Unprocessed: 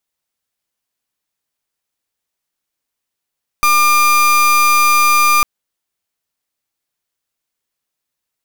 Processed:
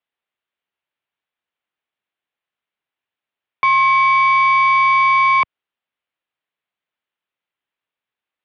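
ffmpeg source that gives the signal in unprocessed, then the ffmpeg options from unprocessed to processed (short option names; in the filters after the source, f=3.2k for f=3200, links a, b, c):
-f lavfi -i "aevalsrc='0.282*(2*lt(mod(1200*t,1),0.31)-1)':d=1.8:s=44100"
-af "lowshelf=f=460:g=-9,highpass=f=200:t=q:w=0.5412,highpass=f=200:t=q:w=1.307,lowpass=f=3.5k:t=q:w=0.5176,lowpass=f=3.5k:t=q:w=0.7071,lowpass=f=3.5k:t=q:w=1.932,afreqshift=-130"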